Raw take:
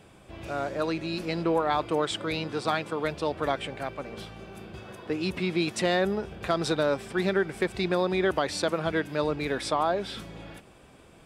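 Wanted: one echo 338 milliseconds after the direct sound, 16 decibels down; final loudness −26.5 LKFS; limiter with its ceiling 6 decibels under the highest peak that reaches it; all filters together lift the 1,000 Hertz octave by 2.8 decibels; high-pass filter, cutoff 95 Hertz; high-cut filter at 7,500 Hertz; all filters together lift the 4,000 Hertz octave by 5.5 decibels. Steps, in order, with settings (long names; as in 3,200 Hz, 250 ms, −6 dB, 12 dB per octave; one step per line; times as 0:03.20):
high-pass filter 95 Hz
low-pass filter 7,500 Hz
parametric band 1,000 Hz +3.5 dB
parametric band 4,000 Hz +6.5 dB
brickwall limiter −15.5 dBFS
single-tap delay 338 ms −16 dB
level +1.5 dB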